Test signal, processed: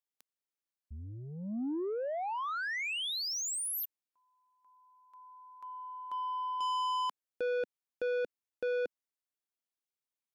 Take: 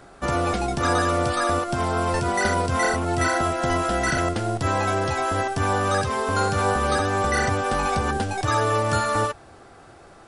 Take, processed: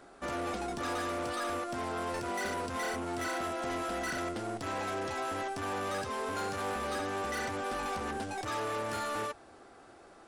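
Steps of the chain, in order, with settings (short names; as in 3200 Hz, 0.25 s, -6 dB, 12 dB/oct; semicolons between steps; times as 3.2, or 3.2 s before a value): soft clip -24 dBFS; resonant low shelf 190 Hz -6.5 dB, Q 1.5; gain -7.5 dB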